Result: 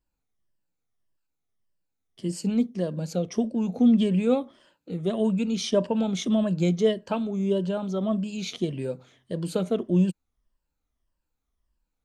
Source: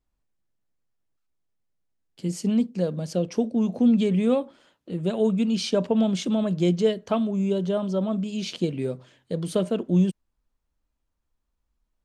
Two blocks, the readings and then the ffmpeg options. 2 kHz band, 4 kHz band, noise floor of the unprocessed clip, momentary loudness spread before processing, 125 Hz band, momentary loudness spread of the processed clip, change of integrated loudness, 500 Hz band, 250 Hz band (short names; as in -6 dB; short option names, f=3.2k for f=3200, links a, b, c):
-0.5 dB, -1.0 dB, -78 dBFS, 10 LU, -1.5 dB, 11 LU, -1.0 dB, -1.5 dB, -1.0 dB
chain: -af "afftfilt=real='re*pow(10,9/40*sin(2*PI*(1.3*log(max(b,1)*sr/1024/100)/log(2)-(-1.7)*(pts-256)/sr)))':imag='im*pow(10,9/40*sin(2*PI*(1.3*log(max(b,1)*sr/1024/100)/log(2)-(-1.7)*(pts-256)/sr)))':win_size=1024:overlap=0.75,volume=-2dB"